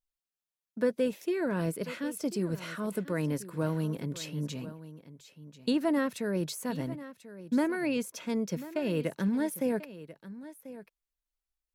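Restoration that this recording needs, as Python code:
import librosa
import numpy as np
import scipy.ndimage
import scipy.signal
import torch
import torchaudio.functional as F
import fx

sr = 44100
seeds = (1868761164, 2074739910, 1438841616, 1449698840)

y = fx.fix_echo_inverse(x, sr, delay_ms=1040, level_db=-15.5)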